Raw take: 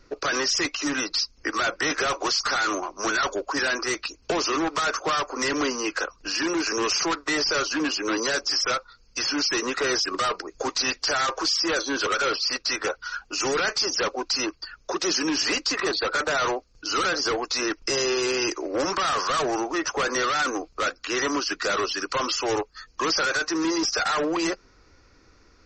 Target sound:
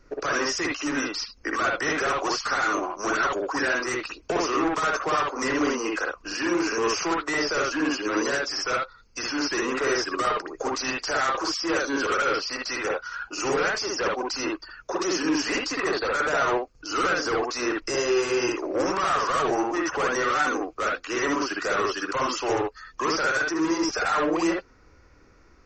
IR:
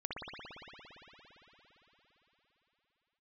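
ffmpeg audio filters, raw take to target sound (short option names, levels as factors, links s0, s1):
-filter_complex "[0:a]equalizer=f=3900:t=o:w=0.97:g=-8[s0];[1:a]atrim=start_sample=2205,atrim=end_sample=3969[s1];[s0][s1]afir=irnorm=-1:irlink=0,volume=1.41"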